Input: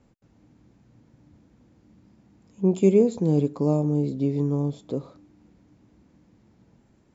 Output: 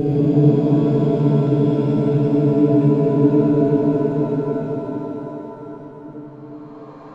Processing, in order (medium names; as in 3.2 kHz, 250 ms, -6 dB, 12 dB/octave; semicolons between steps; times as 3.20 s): companding laws mixed up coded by A; low-pass 3.5 kHz 12 dB/octave; Paulstretch 43×, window 0.10 s, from 3.38 s; pitch-shifted reverb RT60 3.4 s, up +7 st, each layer -8 dB, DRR -4 dB